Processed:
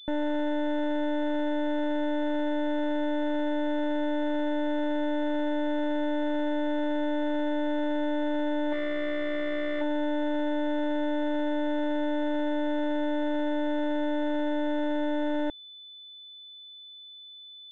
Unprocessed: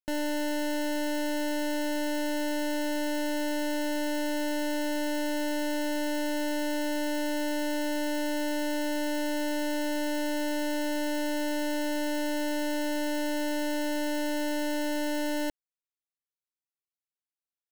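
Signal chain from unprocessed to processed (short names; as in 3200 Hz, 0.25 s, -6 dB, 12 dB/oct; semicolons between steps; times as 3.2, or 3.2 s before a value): spectral gain 8.73–9.82, 320–1100 Hz +10 dB; wavefolder -25 dBFS; pulse-width modulation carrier 3500 Hz; gain +2.5 dB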